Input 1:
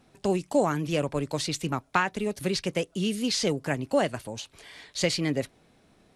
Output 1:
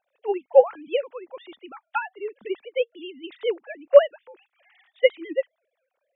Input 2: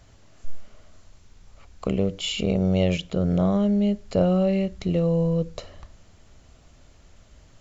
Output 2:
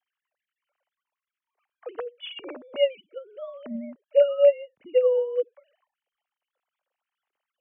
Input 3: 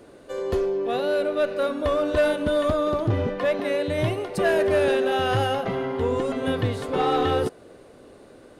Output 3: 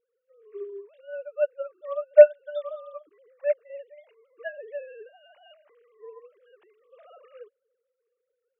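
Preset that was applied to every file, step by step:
formants replaced by sine waves; dynamic bell 230 Hz, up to -5 dB, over -41 dBFS, Q 1.4; upward expansion 2.5:1, over -30 dBFS; normalise loudness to -23 LUFS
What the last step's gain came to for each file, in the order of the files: +11.5 dB, +3.0 dB, +4.0 dB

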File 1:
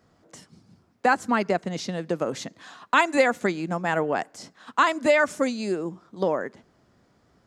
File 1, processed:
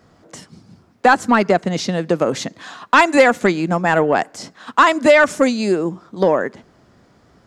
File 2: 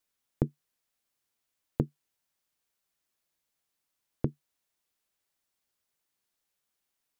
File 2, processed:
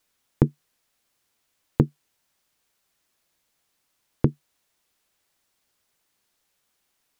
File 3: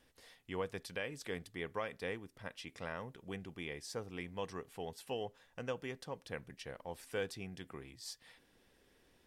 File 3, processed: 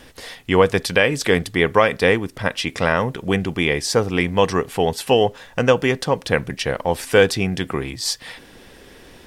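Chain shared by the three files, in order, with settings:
treble shelf 9.5 kHz -4 dB; saturation -11.5 dBFS; peak normalisation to -2 dBFS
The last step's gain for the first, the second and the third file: +10.0 dB, +11.0 dB, +25.0 dB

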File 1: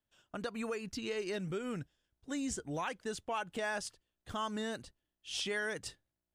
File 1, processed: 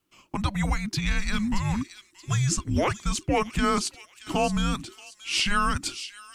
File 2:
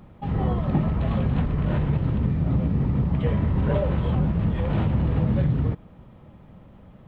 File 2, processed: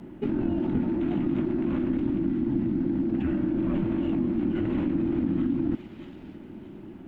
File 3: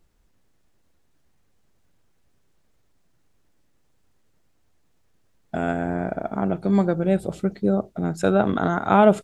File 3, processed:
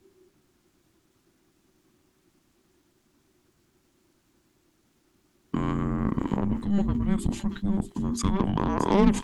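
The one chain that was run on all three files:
Chebyshev shaper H 5 -26 dB, 7 -21 dB, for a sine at -3 dBFS; feedback echo behind a high-pass 627 ms, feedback 33%, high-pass 3.7 kHz, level -9 dB; in parallel at +2.5 dB: compressor with a negative ratio -34 dBFS, ratio -1; on the sum: frequency shift -400 Hz; normalise loudness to -27 LUFS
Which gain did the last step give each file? +9.5 dB, -4.5 dB, -5.0 dB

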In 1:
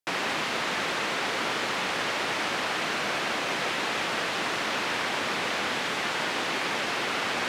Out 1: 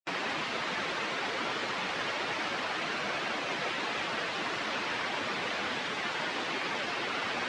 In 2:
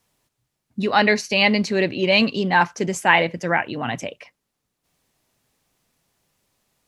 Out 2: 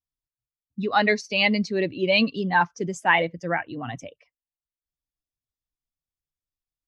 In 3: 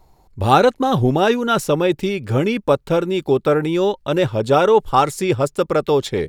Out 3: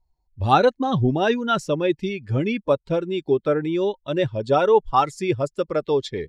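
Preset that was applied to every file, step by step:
expander on every frequency bin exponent 1.5; low-pass 5.8 kHz 12 dB/octave; trim -1.5 dB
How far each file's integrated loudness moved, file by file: -5.0 LU, -3.5 LU, -4.0 LU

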